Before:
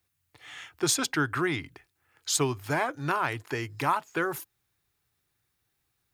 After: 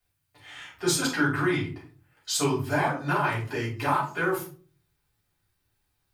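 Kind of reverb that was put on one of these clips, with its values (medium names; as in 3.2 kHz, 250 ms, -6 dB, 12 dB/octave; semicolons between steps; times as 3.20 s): simulated room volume 250 m³, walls furnished, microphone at 6.4 m; trim -9 dB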